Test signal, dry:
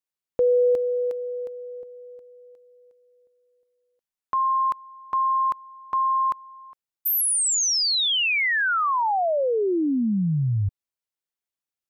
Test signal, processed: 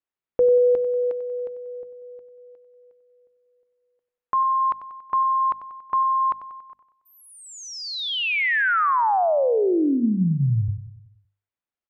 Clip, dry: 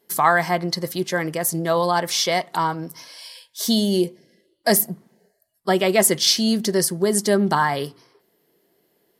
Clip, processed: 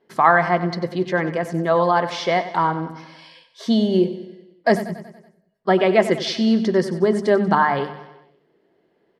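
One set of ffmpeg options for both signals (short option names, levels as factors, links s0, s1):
-af "lowpass=2300,bandreject=f=50:t=h:w=6,bandreject=f=100:t=h:w=6,bandreject=f=150:t=h:w=6,bandreject=f=200:t=h:w=6,bandreject=f=250:t=h:w=6,aecho=1:1:94|188|282|376|470|564:0.224|0.121|0.0653|0.0353|0.019|0.0103,volume=1.33"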